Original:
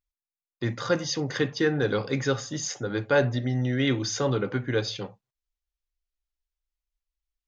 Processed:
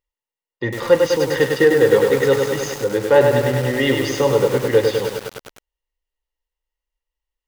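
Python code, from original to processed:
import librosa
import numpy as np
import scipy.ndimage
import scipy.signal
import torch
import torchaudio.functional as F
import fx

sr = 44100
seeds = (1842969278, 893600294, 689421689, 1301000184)

y = fx.low_shelf(x, sr, hz=170.0, db=3.5)
y = fx.small_body(y, sr, hz=(500.0, 900.0, 1900.0, 2800.0), ring_ms=20, db=15)
y = fx.echo_crushed(y, sr, ms=101, feedback_pct=80, bits=5, wet_db=-4)
y = y * 10.0 ** (-1.5 / 20.0)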